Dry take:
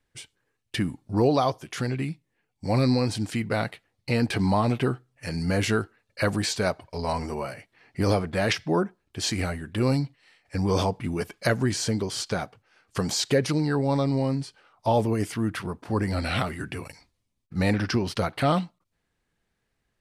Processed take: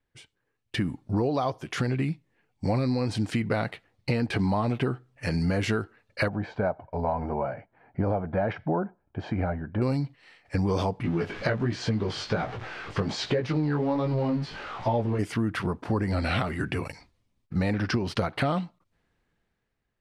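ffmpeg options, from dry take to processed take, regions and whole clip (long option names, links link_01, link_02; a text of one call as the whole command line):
ffmpeg -i in.wav -filter_complex "[0:a]asettb=1/sr,asplit=3[link_01][link_02][link_03];[link_01]atrim=end=6.284[link_04];[link_02]atrim=start=6.28:end=9.82,asetpts=PTS-STARTPTS,afade=type=in:duration=0.004:curve=qsin,afade=type=out:start_time=3.536:duration=0.004:curve=qsin,lowpass=1000,lowshelf=frequency=240:gain=-7.5,aecho=1:1:1.3:0.4,atrim=end_sample=156114[link_05];[link_03]atrim=start=9.816[link_06];[link_04][link_05]acrossfade=duration=0.004:curve1=hsin:curve2=qsin[link_07];[link_07][link_06]acrossfade=duration=0.004:curve1=qsin:curve2=hsin,asettb=1/sr,asplit=3[link_08][link_09][link_10];[link_08]atrim=end=11.034[link_11];[link_09]atrim=start=11.03:end=15.19,asetpts=PTS-STARTPTS,afade=type=in:duration=0.004:curve=qsin,afade=type=out:start_time=4.156:duration=0.004:curve=qsin,aeval=exprs='val(0)+0.5*0.0188*sgn(val(0))':channel_layout=same,lowpass=4000,flanger=delay=16.5:depth=3.5:speed=1.3[link_12];[link_10]atrim=start=15.186[link_13];[link_11][link_12]acrossfade=duration=0.004:curve1=hsin:curve2=qsin[link_14];[link_14][link_13]acrossfade=duration=0.004:curve1=qsin:curve2=hsin,dynaudnorm=framelen=140:gausssize=11:maxgain=11.5dB,lowpass=frequency=3000:poles=1,acompressor=threshold=-19dB:ratio=6,volume=-4dB" out.wav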